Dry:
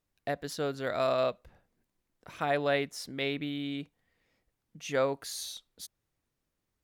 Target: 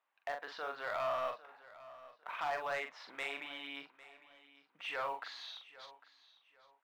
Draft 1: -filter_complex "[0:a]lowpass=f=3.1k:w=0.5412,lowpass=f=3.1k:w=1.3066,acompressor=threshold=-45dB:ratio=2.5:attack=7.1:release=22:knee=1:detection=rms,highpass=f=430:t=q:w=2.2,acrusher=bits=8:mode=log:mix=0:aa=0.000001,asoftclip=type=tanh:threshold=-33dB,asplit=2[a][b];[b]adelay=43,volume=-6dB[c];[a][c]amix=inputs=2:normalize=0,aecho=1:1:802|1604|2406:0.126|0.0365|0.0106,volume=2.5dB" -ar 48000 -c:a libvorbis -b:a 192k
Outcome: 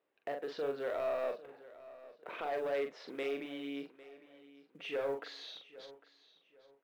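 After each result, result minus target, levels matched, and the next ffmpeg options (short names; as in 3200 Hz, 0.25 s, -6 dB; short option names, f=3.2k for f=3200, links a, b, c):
1000 Hz band -6.0 dB; compressor: peak gain reduction +3.5 dB
-filter_complex "[0:a]lowpass=f=3.1k:w=0.5412,lowpass=f=3.1k:w=1.3066,acompressor=threshold=-45dB:ratio=2.5:attack=7.1:release=22:knee=1:detection=rms,highpass=f=930:t=q:w=2.2,acrusher=bits=8:mode=log:mix=0:aa=0.000001,asoftclip=type=tanh:threshold=-33dB,asplit=2[a][b];[b]adelay=43,volume=-6dB[c];[a][c]amix=inputs=2:normalize=0,aecho=1:1:802|1604|2406:0.126|0.0365|0.0106,volume=2.5dB" -ar 48000 -c:a libvorbis -b:a 192k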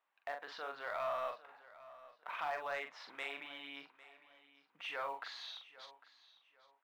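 compressor: peak gain reduction +3.5 dB
-filter_complex "[0:a]lowpass=f=3.1k:w=0.5412,lowpass=f=3.1k:w=1.3066,acompressor=threshold=-39dB:ratio=2.5:attack=7.1:release=22:knee=1:detection=rms,highpass=f=930:t=q:w=2.2,acrusher=bits=8:mode=log:mix=0:aa=0.000001,asoftclip=type=tanh:threshold=-33dB,asplit=2[a][b];[b]adelay=43,volume=-6dB[c];[a][c]amix=inputs=2:normalize=0,aecho=1:1:802|1604|2406:0.126|0.0365|0.0106,volume=2.5dB" -ar 48000 -c:a libvorbis -b:a 192k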